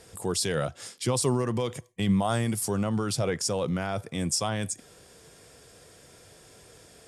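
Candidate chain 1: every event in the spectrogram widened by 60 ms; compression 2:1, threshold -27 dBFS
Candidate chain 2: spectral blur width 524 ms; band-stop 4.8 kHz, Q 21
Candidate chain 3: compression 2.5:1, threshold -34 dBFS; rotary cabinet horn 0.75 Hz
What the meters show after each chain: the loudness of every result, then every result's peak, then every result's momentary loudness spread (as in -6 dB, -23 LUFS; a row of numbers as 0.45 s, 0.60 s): -28.5 LUFS, -33.0 LUFS, -37.0 LUFS; -13.0 dBFS, -19.0 dBFS, -22.0 dBFS; 21 LU, 10 LU, 20 LU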